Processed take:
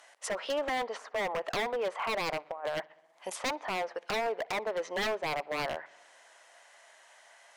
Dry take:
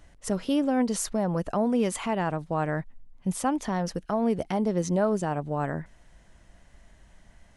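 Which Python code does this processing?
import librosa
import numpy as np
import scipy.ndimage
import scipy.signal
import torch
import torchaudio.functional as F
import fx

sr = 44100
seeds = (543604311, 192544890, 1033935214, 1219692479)

y = scipy.signal.sosfilt(scipy.signal.butter(4, 610.0, 'highpass', fs=sr, output='sos'), x)
y = fx.env_lowpass_down(y, sr, base_hz=1200.0, full_db=-31.0)
y = fx.over_compress(y, sr, threshold_db=-38.0, ratio=-0.5, at=(2.5, 3.3))
y = 10.0 ** (-32.5 / 20.0) * (np.abs((y / 10.0 ** (-32.5 / 20.0) + 3.0) % 4.0 - 2.0) - 1.0)
y = fx.echo_tape(y, sr, ms=62, feedback_pct=85, wet_db=-23.5, lp_hz=3800.0, drive_db=34.0, wow_cents=29)
y = F.gain(torch.from_numpy(y), 6.5).numpy()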